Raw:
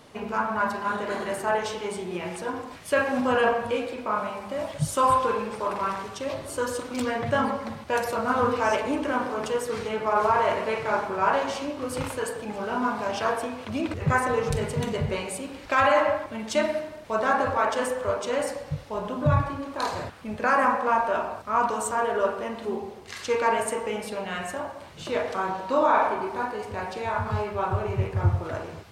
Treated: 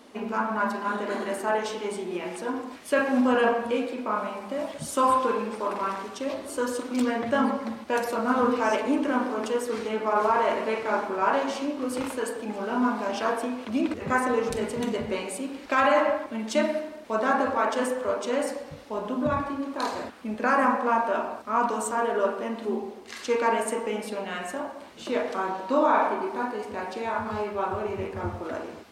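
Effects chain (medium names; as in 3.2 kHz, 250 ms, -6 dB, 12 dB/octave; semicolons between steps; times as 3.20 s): resonant low shelf 180 Hz -9 dB, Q 3; trim -1.5 dB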